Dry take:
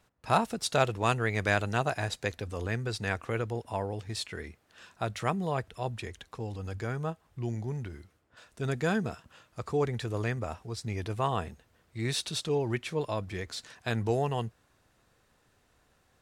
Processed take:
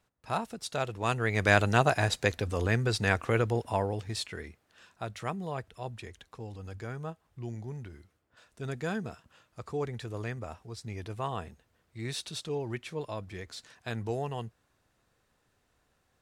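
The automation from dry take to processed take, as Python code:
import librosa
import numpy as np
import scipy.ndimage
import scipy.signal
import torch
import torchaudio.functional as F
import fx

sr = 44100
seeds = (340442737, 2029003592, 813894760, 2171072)

y = fx.gain(x, sr, db=fx.line((0.82, -6.5), (1.58, 5.0), (3.62, 5.0), (4.88, -5.0)))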